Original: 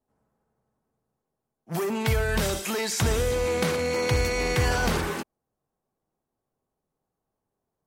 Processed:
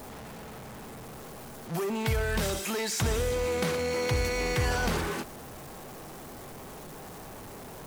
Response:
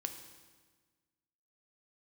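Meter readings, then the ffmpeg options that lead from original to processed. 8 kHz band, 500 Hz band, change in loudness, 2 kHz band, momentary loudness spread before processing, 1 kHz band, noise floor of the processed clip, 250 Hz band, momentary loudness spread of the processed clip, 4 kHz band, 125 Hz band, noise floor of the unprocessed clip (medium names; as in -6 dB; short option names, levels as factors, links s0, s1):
-3.0 dB, -3.5 dB, -3.5 dB, -3.5 dB, 7 LU, -3.0 dB, -44 dBFS, -3.0 dB, 16 LU, -3.0 dB, -3.5 dB, -84 dBFS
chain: -af "aeval=exprs='val(0)+0.5*0.0251*sgn(val(0))':c=same,volume=0.562"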